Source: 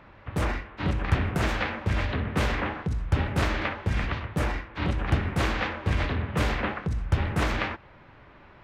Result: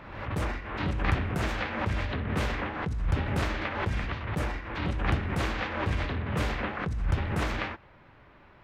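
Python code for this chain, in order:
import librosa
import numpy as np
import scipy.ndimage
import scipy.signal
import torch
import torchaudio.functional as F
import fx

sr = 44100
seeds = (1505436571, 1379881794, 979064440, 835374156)

y = fx.pre_swell(x, sr, db_per_s=53.0)
y = F.gain(torch.from_numpy(y), -4.0).numpy()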